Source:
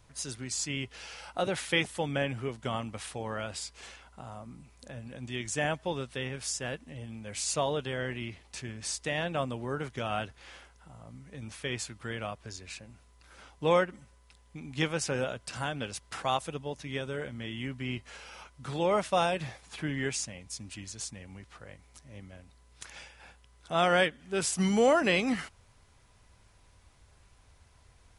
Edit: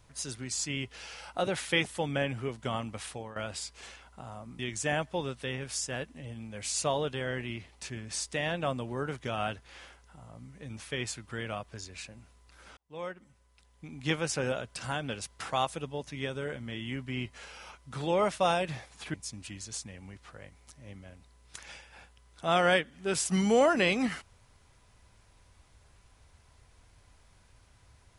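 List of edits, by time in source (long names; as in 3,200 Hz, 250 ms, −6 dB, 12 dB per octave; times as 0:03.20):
0:03.10–0:03.36: fade out, to −14.5 dB
0:04.59–0:05.31: remove
0:13.49–0:14.86: fade in
0:19.86–0:20.41: remove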